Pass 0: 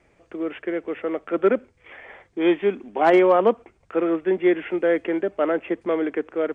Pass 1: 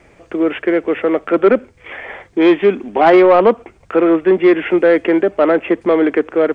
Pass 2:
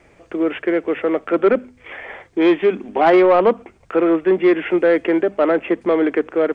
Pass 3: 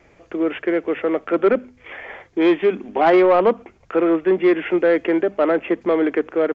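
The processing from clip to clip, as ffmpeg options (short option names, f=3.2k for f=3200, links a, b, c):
-filter_complex "[0:a]asplit=2[a][b];[b]alimiter=limit=-18dB:level=0:latency=1:release=282,volume=-0.5dB[c];[a][c]amix=inputs=2:normalize=0,acontrast=78"
-af "bandreject=f=50:t=h:w=6,bandreject=f=100:t=h:w=6,bandreject=f=150:t=h:w=6,bandreject=f=200:t=h:w=6,bandreject=f=250:t=h:w=6,volume=-3.5dB"
-af "aresample=16000,aresample=44100,volume=-1.5dB"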